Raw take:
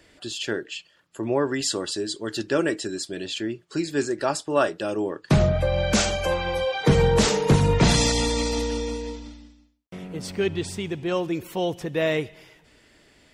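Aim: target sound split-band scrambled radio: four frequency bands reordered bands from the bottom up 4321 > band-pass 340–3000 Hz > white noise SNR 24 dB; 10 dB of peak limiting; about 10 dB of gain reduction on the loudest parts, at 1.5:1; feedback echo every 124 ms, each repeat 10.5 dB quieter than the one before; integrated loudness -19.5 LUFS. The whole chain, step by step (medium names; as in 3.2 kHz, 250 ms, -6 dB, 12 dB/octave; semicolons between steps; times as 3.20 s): compression 1.5:1, threshold -42 dBFS; peak limiter -26.5 dBFS; feedback delay 124 ms, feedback 30%, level -10.5 dB; four frequency bands reordered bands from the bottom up 4321; band-pass 340–3000 Hz; white noise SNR 24 dB; trim +20.5 dB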